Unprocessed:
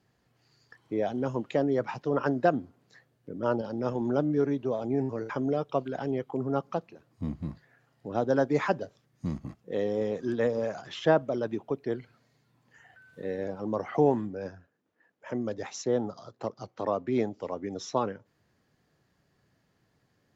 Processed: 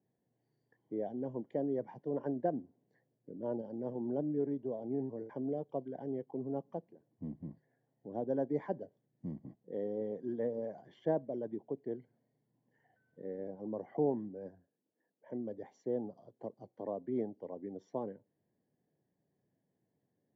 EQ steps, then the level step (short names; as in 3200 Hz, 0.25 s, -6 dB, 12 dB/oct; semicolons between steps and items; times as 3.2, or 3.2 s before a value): running mean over 34 samples; HPF 160 Hz 12 dB/oct; -6.5 dB